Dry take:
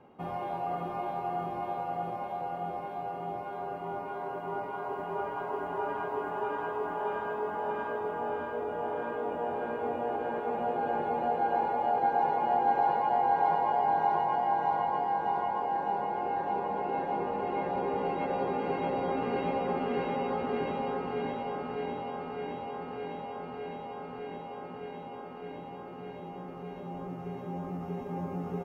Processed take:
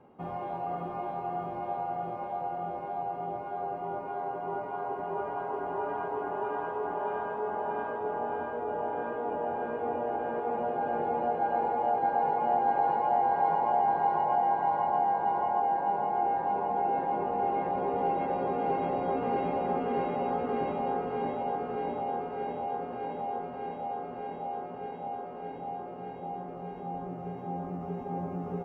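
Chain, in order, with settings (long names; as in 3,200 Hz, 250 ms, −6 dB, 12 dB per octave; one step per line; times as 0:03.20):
high-shelf EQ 2,600 Hz −10 dB
feedback echo with a band-pass in the loop 1,195 ms, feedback 79%, band-pass 620 Hz, level −8 dB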